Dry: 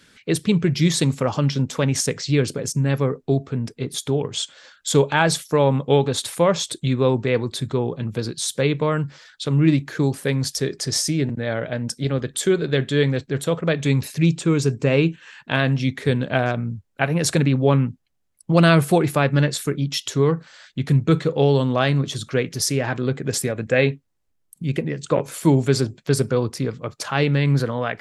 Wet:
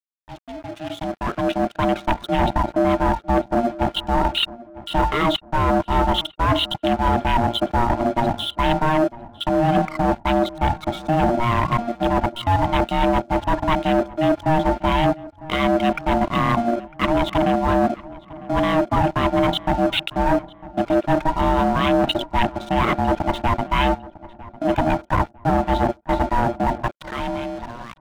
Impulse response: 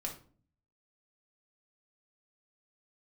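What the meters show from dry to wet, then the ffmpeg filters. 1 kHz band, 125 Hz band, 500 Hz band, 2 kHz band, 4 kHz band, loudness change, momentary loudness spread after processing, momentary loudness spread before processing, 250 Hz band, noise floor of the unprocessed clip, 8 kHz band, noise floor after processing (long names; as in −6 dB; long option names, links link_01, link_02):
+10.0 dB, −6.0 dB, −0.5 dB, −0.5 dB, +1.0 dB, +0.5 dB, 8 LU, 8 LU, 0.0 dB, −67 dBFS, below −15 dB, −48 dBFS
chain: -filter_complex "[0:a]afftfilt=real='re*gte(hypot(re,im),0.0282)':imag='im*gte(hypot(re,im),0.0282)':win_size=1024:overlap=0.75,highpass=140,bandreject=frequency=60:width_type=h:width=6,bandreject=frequency=120:width_type=h:width=6,bandreject=frequency=180:width_type=h:width=6,bandreject=frequency=240:width_type=h:width=6,bandreject=frequency=300:width_type=h:width=6,bandreject=frequency=360:width_type=h:width=6,bandreject=frequency=420:width_type=h:width=6,anlmdn=63.1,adynamicequalizer=threshold=0.00794:dfrequency=1400:dqfactor=2.4:tfrequency=1400:tqfactor=2.4:attack=5:release=100:ratio=0.375:range=4:mode=cutabove:tftype=bell,areverse,acompressor=threshold=-26dB:ratio=20,areverse,aeval=exprs='val(0)*sin(2*PI*470*n/s)':channel_layout=same,aeval=exprs='val(0)+0.00141*sin(2*PI*1400*n/s)':channel_layout=same,aresample=8000,asoftclip=type=tanh:threshold=-29.5dB,aresample=44100,dynaudnorm=framelen=290:gausssize=9:maxgain=15.5dB,aeval=exprs='sgn(val(0))*max(abs(val(0))-0.01,0)':channel_layout=same,asplit=2[link_01][link_02];[link_02]adelay=952,lowpass=frequency=1700:poles=1,volume=-18dB,asplit=2[link_03][link_04];[link_04]adelay=952,lowpass=frequency=1700:poles=1,volume=0.4,asplit=2[link_05][link_06];[link_06]adelay=952,lowpass=frequency=1700:poles=1,volume=0.4[link_07];[link_01][link_03][link_05][link_07]amix=inputs=4:normalize=0,volume=3.5dB"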